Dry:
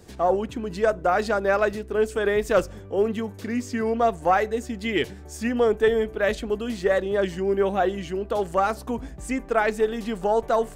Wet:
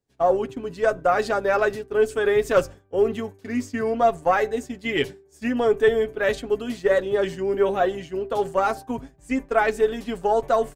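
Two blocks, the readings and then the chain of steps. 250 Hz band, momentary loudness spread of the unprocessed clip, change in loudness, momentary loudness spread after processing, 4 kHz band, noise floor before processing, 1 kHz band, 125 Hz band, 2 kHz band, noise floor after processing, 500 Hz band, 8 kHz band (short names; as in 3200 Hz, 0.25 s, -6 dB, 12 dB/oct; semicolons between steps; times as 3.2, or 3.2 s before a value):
-0.5 dB, 8 LU, +1.0 dB, 9 LU, +0.5 dB, -41 dBFS, +1.0 dB, -2.5 dB, +1.0 dB, -55 dBFS, +1.5 dB, n/a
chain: expander -27 dBFS; comb 7.3 ms, depth 51%; de-hum 391.8 Hz, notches 4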